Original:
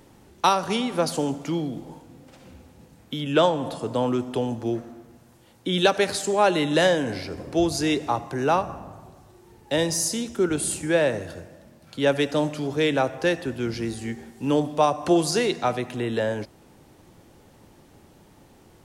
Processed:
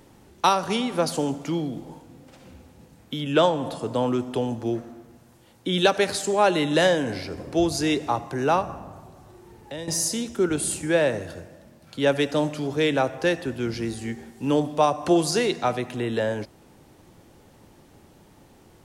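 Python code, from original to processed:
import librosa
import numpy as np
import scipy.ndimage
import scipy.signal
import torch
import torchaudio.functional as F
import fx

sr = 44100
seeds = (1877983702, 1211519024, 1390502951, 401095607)

y = fx.band_squash(x, sr, depth_pct=70, at=(8.96, 9.88))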